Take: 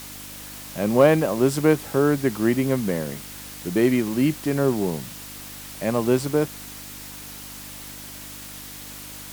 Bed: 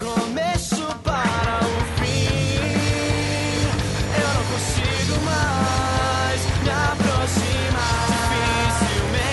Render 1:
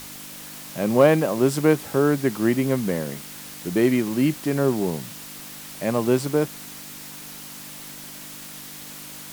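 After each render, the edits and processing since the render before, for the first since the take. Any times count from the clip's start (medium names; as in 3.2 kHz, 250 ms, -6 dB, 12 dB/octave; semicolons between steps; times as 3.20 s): de-hum 50 Hz, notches 2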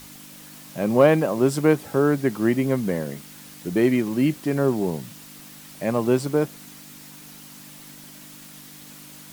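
noise reduction 6 dB, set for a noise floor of -39 dBFS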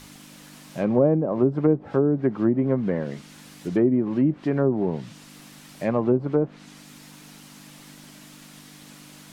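low-pass that closes with the level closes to 470 Hz, closed at -14.5 dBFS; treble shelf 7.8 kHz -7.5 dB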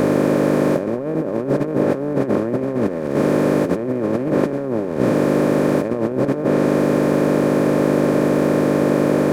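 spectral levelling over time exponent 0.2; compressor with a negative ratio -17 dBFS, ratio -0.5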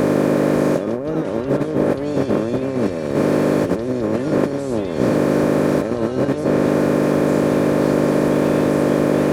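add bed -16 dB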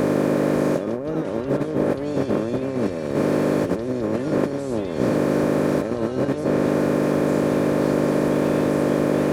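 trim -3.5 dB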